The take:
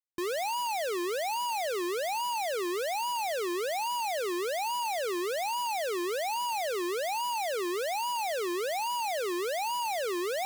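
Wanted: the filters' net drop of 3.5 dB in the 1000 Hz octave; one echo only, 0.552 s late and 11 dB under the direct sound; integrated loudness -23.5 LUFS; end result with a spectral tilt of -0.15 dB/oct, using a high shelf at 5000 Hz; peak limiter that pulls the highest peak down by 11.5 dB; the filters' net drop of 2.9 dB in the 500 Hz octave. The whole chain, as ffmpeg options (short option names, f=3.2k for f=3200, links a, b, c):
-af "equalizer=f=500:t=o:g=-3,equalizer=f=1k:t=o:g=-3.5,highshelf=f=5k:g=8.5,alimiter=level_in=9dB:limit=-24dB:level=0:latency=1,volume=-9dB,aecho=1:1:552:0.282,volume=18dB"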